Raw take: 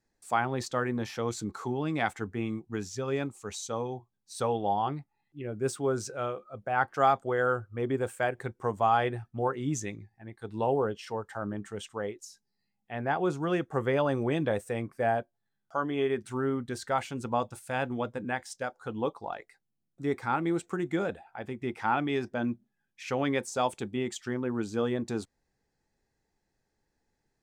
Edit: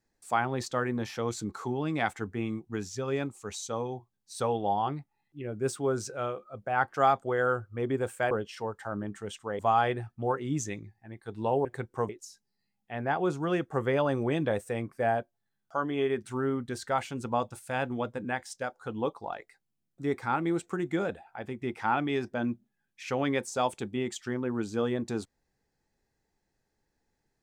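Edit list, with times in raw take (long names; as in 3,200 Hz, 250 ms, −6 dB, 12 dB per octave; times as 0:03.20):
0:08.31–0:08.75: swap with 0:10.81–0:12.09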